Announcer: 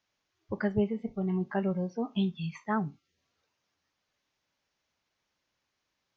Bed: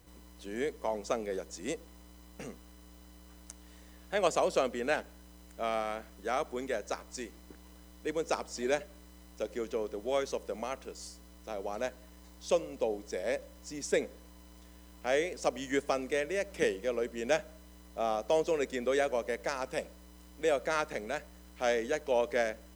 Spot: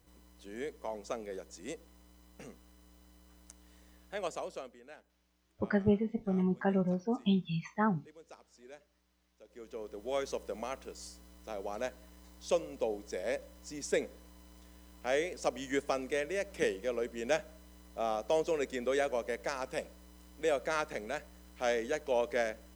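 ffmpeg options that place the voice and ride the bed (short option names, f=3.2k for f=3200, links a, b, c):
-filter_complex "[0:a]adelay=5100,volume=0dB[a];[1:a]volume=14dB,afade=t=out:st=3.95:d=0.86:silence=0.158489,afade=t=in:st=9.44:d=0.85:silence=0.1[b];[a][b]amix=inputs=2:normalize=0"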